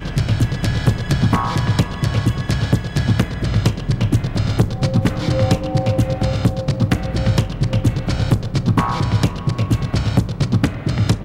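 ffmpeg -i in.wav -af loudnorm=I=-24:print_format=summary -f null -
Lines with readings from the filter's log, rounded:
Input Integrated:    -18.9 LUFS
Input True Peak:      -5.4 dBTP
Input LRA:             0.5 LU
Input Threshold:     -28.9 LUFS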